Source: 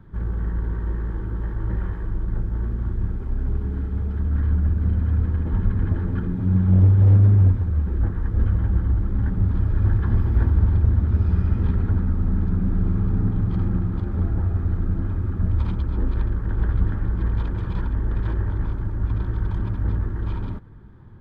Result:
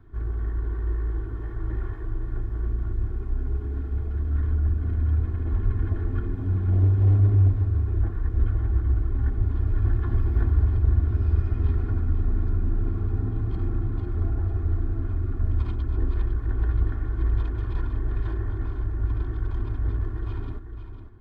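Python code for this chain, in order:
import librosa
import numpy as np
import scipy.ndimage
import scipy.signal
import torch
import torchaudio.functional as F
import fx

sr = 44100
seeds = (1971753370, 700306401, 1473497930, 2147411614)

y = x + 0.74 * np.pad(x, (int(2.8 * sr / 1000.0), 0))[:len(x)]
y = y + 10.0 ** (-9.5 / 20.0) * np.pad(y, (int(503 * sr / 1000.0), 0))[:len(y)]
y = F.gain(torch.from_numpy(y), -6.0).numpy()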